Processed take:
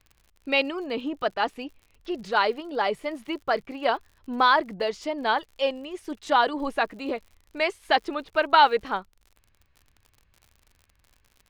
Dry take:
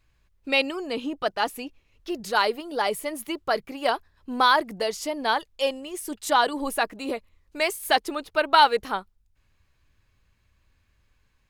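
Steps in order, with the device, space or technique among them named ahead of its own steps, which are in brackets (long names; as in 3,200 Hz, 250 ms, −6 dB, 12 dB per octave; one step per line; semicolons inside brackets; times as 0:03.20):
lo-fi chain (low-pass filter 3,700 Hz 12 dB per octave; tape wow and flutter 22 cents; surface crackle 68 per second −42 dBFS)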